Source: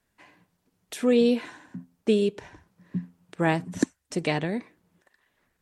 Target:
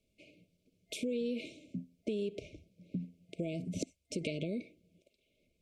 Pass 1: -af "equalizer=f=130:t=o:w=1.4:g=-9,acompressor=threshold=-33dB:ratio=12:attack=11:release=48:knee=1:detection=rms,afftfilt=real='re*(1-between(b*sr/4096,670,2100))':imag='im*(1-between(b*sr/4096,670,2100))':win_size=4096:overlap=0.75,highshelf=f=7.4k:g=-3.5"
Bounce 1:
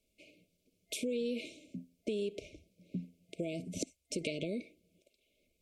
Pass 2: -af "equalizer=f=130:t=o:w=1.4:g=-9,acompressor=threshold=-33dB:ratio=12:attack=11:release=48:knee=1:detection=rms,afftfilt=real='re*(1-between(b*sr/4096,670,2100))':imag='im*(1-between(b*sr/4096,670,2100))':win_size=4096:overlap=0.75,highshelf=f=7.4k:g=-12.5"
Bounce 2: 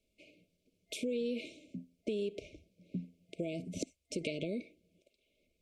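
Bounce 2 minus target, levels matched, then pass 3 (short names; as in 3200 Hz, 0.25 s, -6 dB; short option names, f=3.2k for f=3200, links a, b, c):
125 Hz band -3.0 dB
-af "equalizer=f=130:t=o:w=1.4:g=-2,acompressor=threshold=-33dB:ratio=12:attack=11:release=48:knee=1:detection=rms,afftfilt=real='re*(1-between(b*sr/4096,670,2100))':imag='im*(1-between(b*sr/4096,670,2100))':win_size=4096:overlap=0.75,highshelf=f=7.4k:g=-12.5"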